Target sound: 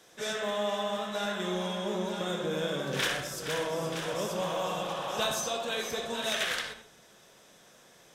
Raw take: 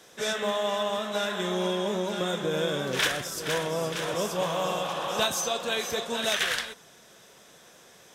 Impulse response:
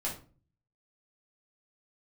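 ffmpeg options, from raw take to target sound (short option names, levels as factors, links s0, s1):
-filter_complex "[0:a]asplit=2[s0][s1];[1:a]atrim=start_sample=2205,lowpass=8400,adelay=59[s2];[s1][s2]afir=irnorm=-1:irlink=0,volume=0.398[s3];[s0][s3]amix=inputs=2:normalize=0,volume=0.562"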